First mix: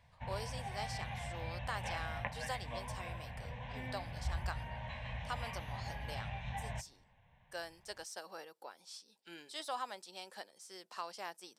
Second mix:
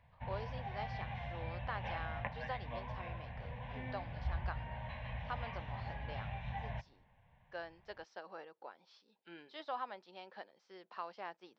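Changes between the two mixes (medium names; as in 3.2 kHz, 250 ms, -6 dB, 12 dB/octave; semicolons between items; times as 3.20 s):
background: remove low-pass 3.5 kHz; master: add Gaussian low-pass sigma 2.7 samples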